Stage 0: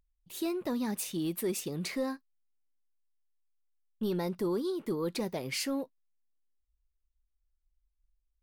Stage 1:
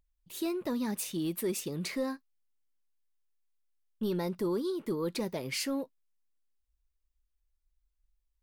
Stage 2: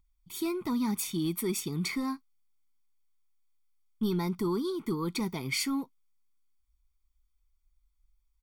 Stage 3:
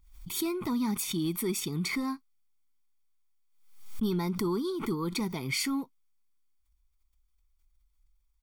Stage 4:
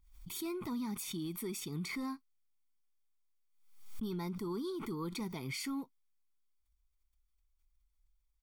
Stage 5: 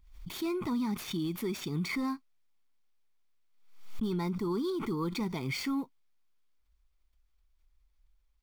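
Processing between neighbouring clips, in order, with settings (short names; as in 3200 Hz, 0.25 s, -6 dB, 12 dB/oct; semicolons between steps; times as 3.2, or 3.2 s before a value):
notch 750 Hz, Q 12
comb 0.9 ms, depth 95%
backwards sustainer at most 78 dB/s
limiter -26 dBFS, peak gain reduction 9.5 dB; gain -6 dB
median filter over 5 samples; gain +6.5 dB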